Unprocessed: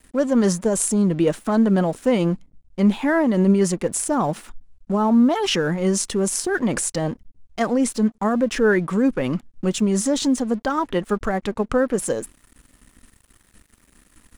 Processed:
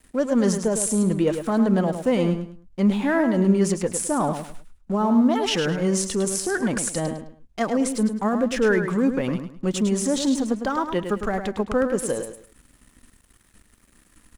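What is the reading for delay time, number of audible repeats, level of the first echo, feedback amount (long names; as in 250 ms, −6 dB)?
105 ms, 3, −8.0 dB, 28%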